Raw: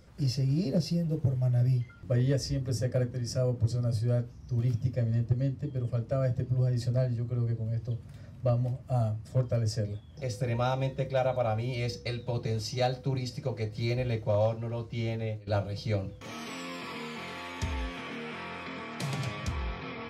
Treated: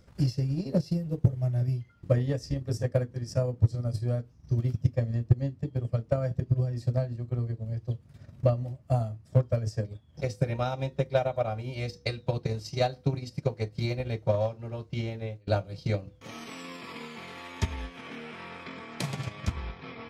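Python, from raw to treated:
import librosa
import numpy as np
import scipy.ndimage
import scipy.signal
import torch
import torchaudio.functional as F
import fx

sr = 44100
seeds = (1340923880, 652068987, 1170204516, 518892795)

y = fx.transient(x, sr, attack_db=10, sustain_db=-7)
y = y * librosa.db_to_amplitude(-3.0)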